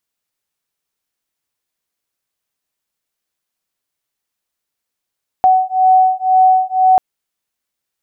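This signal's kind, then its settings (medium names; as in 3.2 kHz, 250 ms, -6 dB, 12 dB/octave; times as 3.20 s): beating tones 748 Hz, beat 2 Hz, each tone -11.5 dBFS 1.54 s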